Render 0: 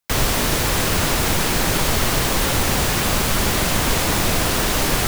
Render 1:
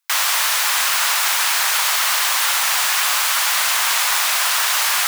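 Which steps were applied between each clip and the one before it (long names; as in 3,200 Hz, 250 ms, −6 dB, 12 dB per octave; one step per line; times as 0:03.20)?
sub-octave generator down 1 octave, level −1 dB
high-pass filter 930 Hz 24 dB per octave
level +4.5 dB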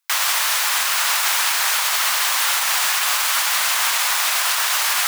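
brickwall limiter −9 dBFS, peak gain reduction 4 dB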